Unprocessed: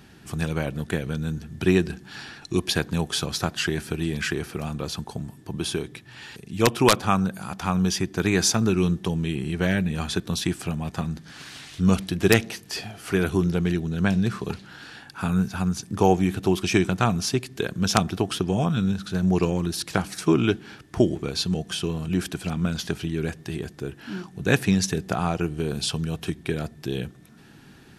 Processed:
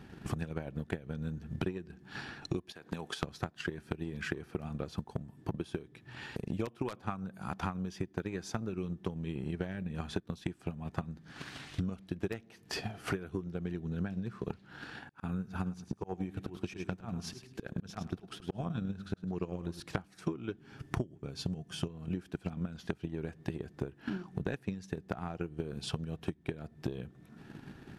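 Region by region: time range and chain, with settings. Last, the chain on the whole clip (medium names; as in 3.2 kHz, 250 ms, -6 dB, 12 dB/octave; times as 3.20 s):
2.72–3.23 s: high-pass 480 Hz 6 dB/octave + compression 8:1, threshold -30 dBFS
15.08–19.80 s: slow attack 505 ms + feedback delay 105 ms, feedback 22%, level -10 dB
20.58–21.88 s: tone controls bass +5 dB, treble +5 dB + band-stop 3.9 kHz, Q 13 + comb 7.4 ms, depth 36%
whole clip: treble shelf 3.1 kHz -12 dB; transient shaper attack +12 dB, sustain -3 dB; compression 12:1, threshold -31 dBFS; trim -1.5 dB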